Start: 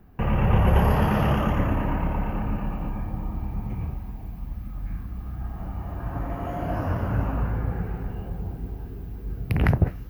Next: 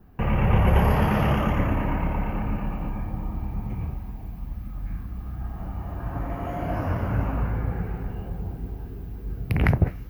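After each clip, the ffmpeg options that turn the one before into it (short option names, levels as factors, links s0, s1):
-af "adynamicequalizer=threshold=0.00158:dfrequency=2200:dqfactor=5.9:tfrequency=2200:tqfactor=5.9:attack=5:release=100:ratio=0.375:range=3:mode=boostabove:tftype=bell"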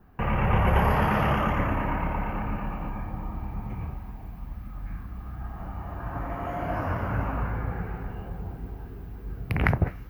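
-af "equalizer=f=1300:w=0.66:g=7,volume=0.631"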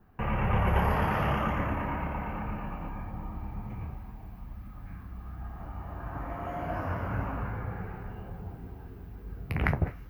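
-af "flanger=delay=9.2:depth=4.4:regen=-60:speed=0.25:shape=sinusoidal"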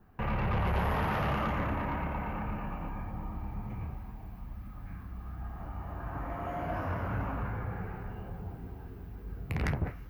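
-af "asoftclip=type=tanh:threshold=0.0596"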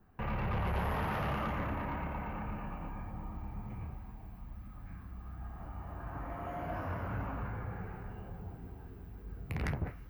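-af "aexciter=amount=1.2:drive=1.6:freq=10000,volume=0.631"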